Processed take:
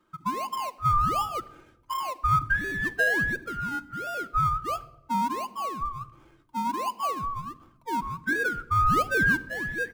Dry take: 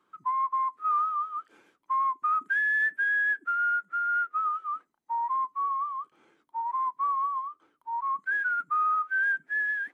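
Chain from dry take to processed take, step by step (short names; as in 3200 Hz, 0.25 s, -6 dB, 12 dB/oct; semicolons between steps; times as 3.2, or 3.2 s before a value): comb 3.2 ms, depth 49%; in parallel at -6 dB: decimation with a swept rate 30×, swing 60% 1.4 Hz; on the sum: shoebox room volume 3400 m³, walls furnished, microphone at 0.67 m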